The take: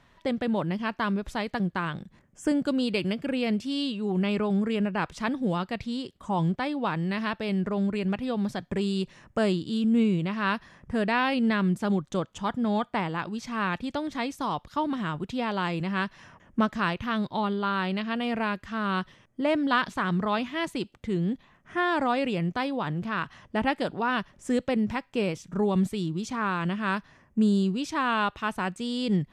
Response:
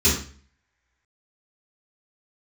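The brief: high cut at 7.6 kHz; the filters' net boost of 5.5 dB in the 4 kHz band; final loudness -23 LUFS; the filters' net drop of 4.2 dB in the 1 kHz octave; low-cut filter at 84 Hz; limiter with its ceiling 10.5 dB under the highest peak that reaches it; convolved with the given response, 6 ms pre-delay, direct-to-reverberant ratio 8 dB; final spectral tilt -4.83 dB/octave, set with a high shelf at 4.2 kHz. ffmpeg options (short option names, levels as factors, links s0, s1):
-filter_complex "[0:a]highpass=84,lowpass=7600,equalizer=f=1000:t=o:g=-6,equalizer=f=4000:t=o:g=3.5,highshelf=f=4200:g=8.5,alimiter=limit=0.0841:level=0:latency=1,asplit=2[s0][s1];[1:a]atrim=start_sample=2205,adelay=6[s2];[s1][s2]afir=irnorm=-1:irlink=0,volume=0.0562[s3];[s0][s3]amix=inputs=2:normalize=0,volume=1.88"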